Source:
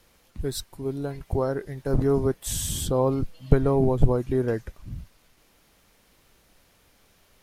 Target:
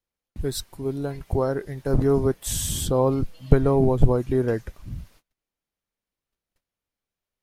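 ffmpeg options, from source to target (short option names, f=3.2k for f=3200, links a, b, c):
-af "agate=range=-31dB:threshold=-54dB:ratio=16:detection=peak,volume=2dB"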